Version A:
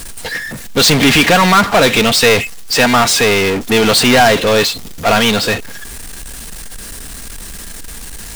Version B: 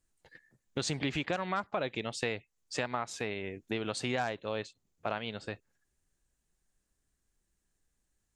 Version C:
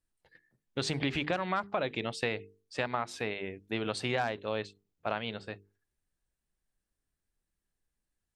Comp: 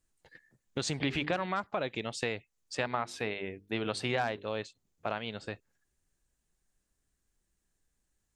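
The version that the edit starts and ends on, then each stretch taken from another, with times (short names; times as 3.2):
B
1–1.46 from C
2.75–4.47 from C
not used: A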